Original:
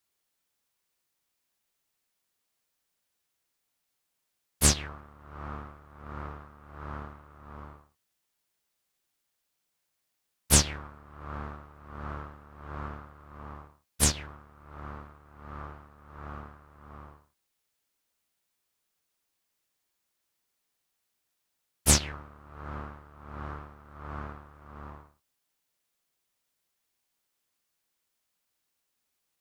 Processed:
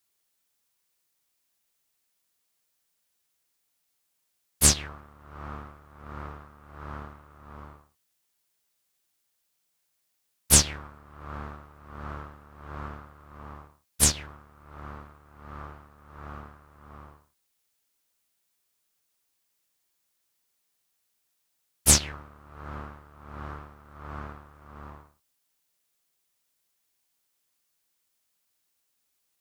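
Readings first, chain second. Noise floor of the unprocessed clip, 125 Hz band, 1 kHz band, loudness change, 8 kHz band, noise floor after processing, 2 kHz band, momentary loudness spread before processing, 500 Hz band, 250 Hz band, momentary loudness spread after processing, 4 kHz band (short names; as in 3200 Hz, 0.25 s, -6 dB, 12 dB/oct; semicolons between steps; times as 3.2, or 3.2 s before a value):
-81 dBFS, 0.0 dB, +0.5 dB, +8.0 dB, +4.5 dB, -76 dBFS, +1.0 dB, 24 LU, 0.0 dB, 0.0 dB, 22 LU, +3.0 dB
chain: high shelf 4100 Hz +5.5 dB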